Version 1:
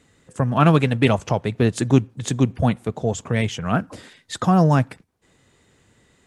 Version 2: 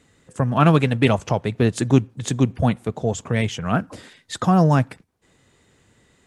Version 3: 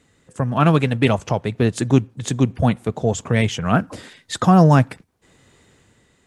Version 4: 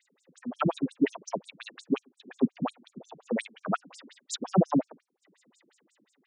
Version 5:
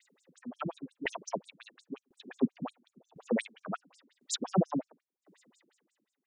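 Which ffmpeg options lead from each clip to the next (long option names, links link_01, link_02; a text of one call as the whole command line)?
ffmpeg -i in.wav -af anull out.wav
ffmpeg -i in.wav -af "dynaudnorm=framelen=100:gausssize=13:maxgain=8.5dB,volume=-1dB" out.wav
ffmpeg -i in.wav -af "afftfilt=real='re*between(b*sr/1024,230*pow(7400/230,0.5+0.5*sin(2*PI*5.6*pts/sr))/1.41,230*pow(7400/230,0.5+0.5*sin(2*PI*5.6*pts/sr))*1.41)':imag='im*between(b*sr/1024,230*pow(7400/230,0.5+0.5*sin(2*PI*5.6*pts/sr))/1.41,230*pow(7400/230,0.5+0.5*sin(2*PI*5.6*pts/sr))*1.41)':win_size=1024:overlap=0.75,volume=-2dB" out.wav
ffmpeg -i in.wav -af "aeval=exprs='val(0)*pow(10,-23*if(lt(mod(0.95*n/s,1),2*abs(0.95)/1000),1-mod(0.95*n/s,1)/(2*abs(0.95)/1000),(mod(0.95*n/s,1)-2*abs(0.95)/1000)/(1-2*abs(0.95)/1000))/20)':channel_layout=same,volume=4dB" out.wav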